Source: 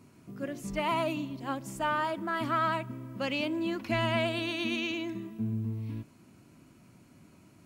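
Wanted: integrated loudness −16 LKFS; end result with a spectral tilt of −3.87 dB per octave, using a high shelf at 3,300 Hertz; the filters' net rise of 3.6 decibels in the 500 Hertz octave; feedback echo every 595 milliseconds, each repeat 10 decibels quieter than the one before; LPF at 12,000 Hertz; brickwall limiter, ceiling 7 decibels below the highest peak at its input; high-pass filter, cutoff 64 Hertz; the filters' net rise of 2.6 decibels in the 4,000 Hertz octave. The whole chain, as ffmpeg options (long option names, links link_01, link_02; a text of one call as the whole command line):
ffmpeg -i in.wav -af "highpass=64,lowpass=12000,equalizer=frequency=500:width_type=o:gain=5.5,highshelf=frequency=3300:gain=-3.5,equalizer=frequency=4000:width_type=o:gain=6,alimiter=limit=-21dB:level=0:latency=1,aecho=1:1:595|1190|1785|2380:0.316|0.101|0.0324|0.0104,volume=16dB" out.wav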